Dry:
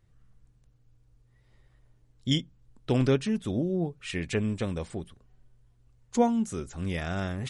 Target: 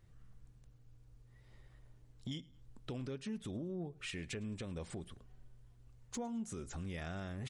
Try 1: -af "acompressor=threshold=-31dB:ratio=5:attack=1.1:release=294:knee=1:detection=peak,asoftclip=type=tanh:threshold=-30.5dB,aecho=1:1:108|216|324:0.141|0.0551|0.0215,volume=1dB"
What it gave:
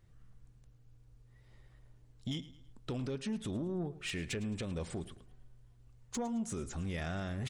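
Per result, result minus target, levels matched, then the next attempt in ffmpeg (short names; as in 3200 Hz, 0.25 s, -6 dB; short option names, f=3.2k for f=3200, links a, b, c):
compressor: peak gain reduction -6 dB; echo-to-direct +7.5 dB
-af "acompressor=threshold=-38.5dB:ratio=5:attack=1.1:release=294:knee=1:detection=peak,asoftclip=type=tanh:threshold=-30.5dB,aecho=1:1:108|216|324:0.141|0.0551|0.0215,volume=1dB"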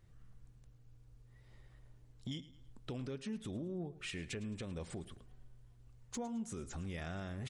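echo-to-direct +7.5 dB
-af "acompressor=threshold=-38.5dB:ratio=5:attack=1.1:release=294:knee=1:detection=peak,asoftclip=type=tanh:threshold=-30.5dB,aecho=1:1:108|216:0.0596|0.0232,volume=1dB"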